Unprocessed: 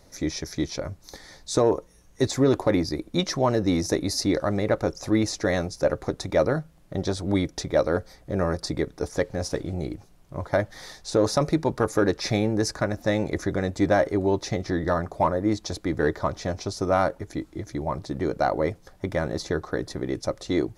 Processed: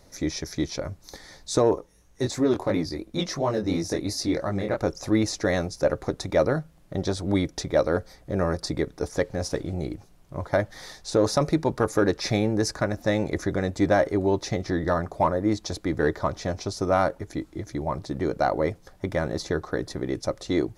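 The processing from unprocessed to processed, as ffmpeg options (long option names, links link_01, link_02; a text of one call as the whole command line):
ffmpeg -i in.wav -filter_complex "[0:a]asettb=1/sr,asplit=3[link_01][link_02][link_03];[link_01]atrim=end=1.754[link_04];[link_02]atrim=start=1.75:end=4.77,asetpts=PTS-STARTPTS,afade=type=in:duration=0.004:curve=qsin,afade=type=out:start_time=3.016:duration=0.004:curve=qsin,flanger=delay=18:depth=6.4:speed=2.9[link_05];[link_03]atrim=start=4.766[link_06];[link_04][link_05]acrossfade=duration=0.004:curve1=hsin:curve2=qsin[link_07];[link_07][link_06]acrossfade=duration=0.004:curve1=qsin:curve2=hsin" out.wav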